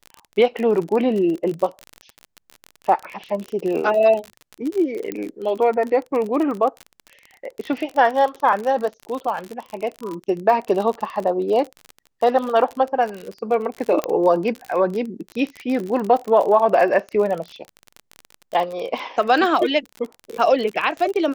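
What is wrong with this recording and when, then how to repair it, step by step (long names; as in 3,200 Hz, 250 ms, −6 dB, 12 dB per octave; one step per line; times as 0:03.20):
surface crackle 38 per second −25 dBFS
0:05.12: click −14 dBFS
0:14.04: click −10 dBFS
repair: click removal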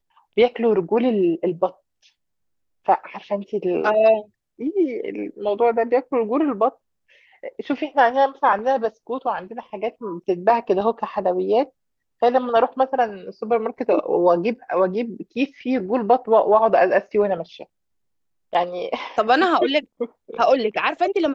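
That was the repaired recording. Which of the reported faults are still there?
none of them is left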